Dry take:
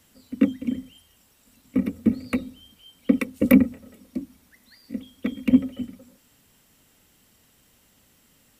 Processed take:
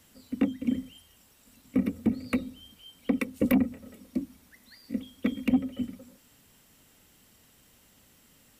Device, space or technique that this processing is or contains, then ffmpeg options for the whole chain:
soft clipper into limiter: -af "asoftclip=type=tanh:threshold=0.355,alimiter=limit=0.168:level=0:latency=1:release=303"

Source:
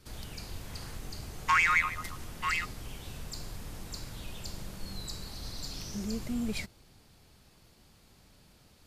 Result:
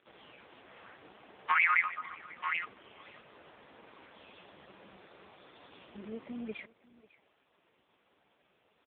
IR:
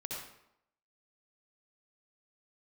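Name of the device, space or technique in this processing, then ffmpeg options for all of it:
satellite phone: -af "highpass=390,lowpass=3300,aecho=1:1:544:0.0841,volume=1.19" -ar 8000 -c:a libopencore_amrnb -b:a 4750

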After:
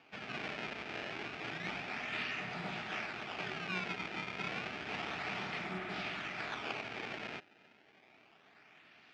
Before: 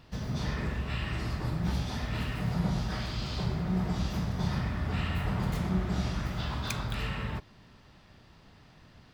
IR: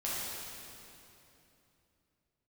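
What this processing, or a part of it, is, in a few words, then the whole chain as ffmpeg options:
circuit-bent sampling toy: -af "acrusher=samples=22:mix=1:aa=0.000001:lfo=1:lforange=35.2:lforate=0.3,highpass=490,equalizer=f=530:t=q:w=4:g=-10,equalizer=f=1000:t=q:w=4:g=-9,equalizer=f=2400:t=q:w=4:g=8,equalizer=f=4100:t=q:w=4:g=-4,lowpass=f=4500:w=0.5412,lowpass=f=4500:w=1.3066,volume=1.19"

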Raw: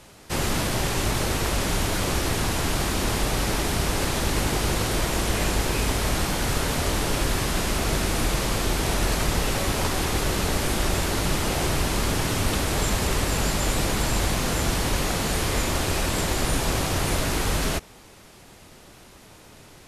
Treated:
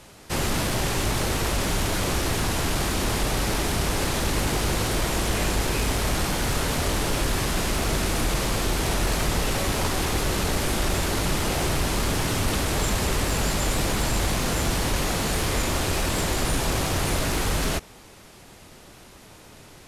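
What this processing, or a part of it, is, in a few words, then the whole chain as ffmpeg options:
parallel distortion: -filter_complex "[0:a]asplit=2[s0][s1];[s1]asoftclip=type=hard:threshold=0.0631,volume=0.562[s2];[s0][s2]amix=inputs=2:normalize=0,volume=0.708"

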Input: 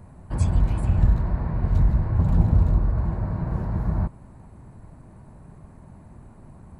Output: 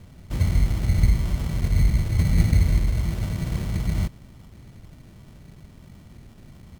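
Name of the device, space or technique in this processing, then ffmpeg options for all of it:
crushed at another speed: -af "asetrate=35280,aresample=44100,acrusher=samples=26:mix=1:aa=0.000001,asetrate=55125,aresample=44100,equalizer=f=1000:w=0.96:g=-5.5"

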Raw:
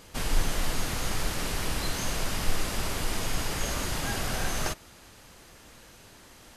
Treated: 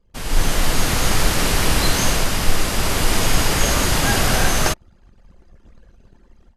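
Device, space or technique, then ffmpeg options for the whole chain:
voice memo with heavy noise removal: -af "anlmdn=0.0398,dynaudnorm=f=230:g=3:m=5.01"

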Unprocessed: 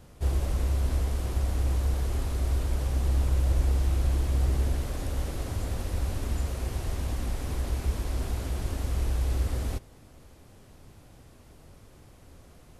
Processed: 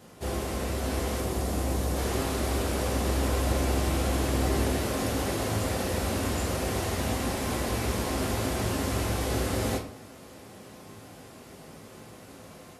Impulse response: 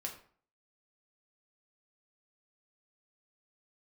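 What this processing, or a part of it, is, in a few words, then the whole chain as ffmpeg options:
far laptop microphone: -filter_complex "[0:a]asettb=1/sr,asplit=3[s0][s1][s2];[s0]atrim=end=1.204[s3];[s1]atrim=start=1.2:end=1.97,asetpts=PTS-STARTPTS,afade=t=in:d=0.004:c=qsin,afade=t=out:st=0.766:d=0.004:c=qsin,equalizer=f=2100:t=o:w=2.9:g=-5[s4];[s2]atrim=start=1.966[s5];[s3][s4]acrossfade=d=0.004:c1=hsin:c2=qsin[s6];[s6][s5]acrossfade=d=0.004:c1=qsin:c2=hsin[s7];[1:a]atrim=start_sample=2205[s8];[s7][s8]afir=irnorm=-1:irlink=0,highpass=160,dynaudnorm=f=670:g=3:m=1.58,volume=2.24"

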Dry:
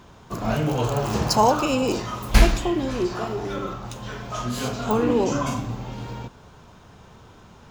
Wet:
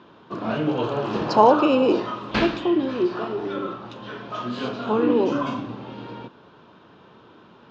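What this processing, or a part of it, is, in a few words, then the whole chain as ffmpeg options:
kitchen radio: -filter_complex "[0:a]asettb=1/sr,asplit=3[s0][s1][s2];[s0]atrim=end=1.284[s3];[s1]atrim=start=1.28:end=2.13,asetpts=PTS-STARTPTS,afade=t=in:d=0.004:c=qsin,afade=t=out:st=0.846:d=0.004:c=qsin,equalizer=f=600:w=0.66:g=5[s4];[s2]atrim=start=2.126[s5];[s3][s4]acrossfade=d=0.004:c1=hsin:c2=qsin[s6];[s6][s5]acrossfade=d=0.004:c1=qsin:c2=hsin,highpass=210,equalizer=f=320:t=q:w=4:g=5,equalizer=f=750:t=q:w=4:g=-5,equalizer=f=2100:t=q:w=4:g=-6,lowpass=f=3800:w=0.5412,lowpass=f=3800:w=1.3066,volume=1.12"

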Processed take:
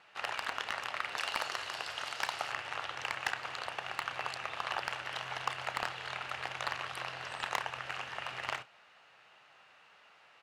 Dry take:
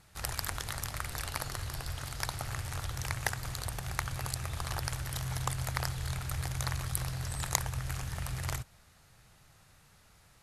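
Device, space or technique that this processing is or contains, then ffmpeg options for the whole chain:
megaphone: -filter_complex "[0:a]asettb=1/sr,asplit=3[s0][s1][s2];[s0]atrim=end=1.174[s3];[s1]atrim=start=1.17:end=2.52,asetpts=PTS-STARTPTS,afade=t=in:d=0.004:c=qsin,afade=t=out:st=1.346:d=0.004:c=qsin,bass=f=250:g=-2,treble=f=4000:g=9[s4];[s2]atrim=start=2.516[s5];[s3][s4]acrossfade=d=0.004:c1=hsin:c2=qsin[s6];[s6][s5]acrossfade=d=0.004:c1=qsin:c2=hsin,highpass=560,lowpass=2700,equalizer=f=2800:t=o:w=0.26:g=9,asoftclip=type=hard:threshold=0.0447,asplit=2[s7][s8];[s8]adelay=32,volume=0.2[s9];[s7][s9]amix=inputs=2:normalize=0,volume=1.88"

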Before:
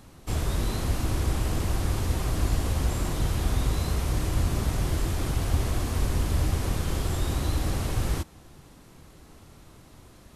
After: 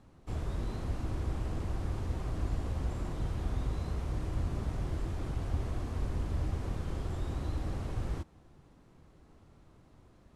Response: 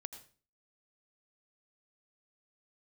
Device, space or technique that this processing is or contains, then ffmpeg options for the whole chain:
through cloth: -af "lowpass=9500,highshelf=f=2300:g=-11,volume=0.398"

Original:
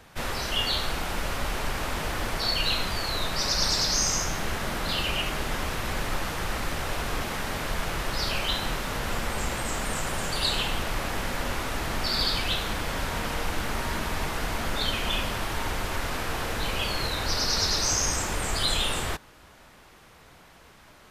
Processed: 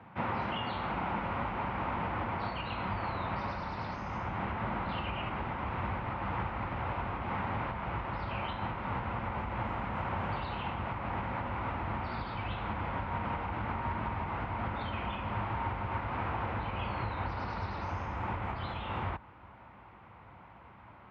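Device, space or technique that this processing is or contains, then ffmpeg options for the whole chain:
bass amplifier: -af "highpass=46,bandreject=f=620:w=18,asubboost=boost=7:cutoff=61,acompressor=threshold=0.0501:ratio=6,highpass=f=70:w=0.5412,highpass=f=70:w=1.3066,equalizer=f=73:t=q:w=4:g=-8,equalizer=f=110:t=q:w=4:g=5,equalizer=f=200:t=q:w=4:g=7,equalizer=f=440:t=q:w=4:g=-6,equalizer=f=920:t=q:w=4:g=6,equalizer=f=1700:t=q:w=4:g=-7,lowpass=f=2200:w=0.5412,lowpass=f=2200:w=1.3066"

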